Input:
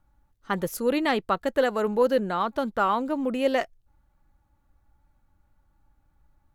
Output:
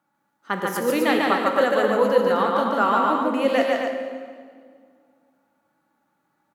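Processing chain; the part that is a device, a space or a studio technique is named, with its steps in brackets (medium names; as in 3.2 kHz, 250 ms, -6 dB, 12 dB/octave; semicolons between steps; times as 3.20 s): stadium PA (high-pass 190 Hz 24 dB/octave; peaking EQ 1.6 kHz +3 dB 1.6 oct; loudspeakers at several distances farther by 50 m -2 dB, 89 m -6 dB; reverberation RT60 2.0 s, pre-delay 7 ms, DRR 4.5 dB)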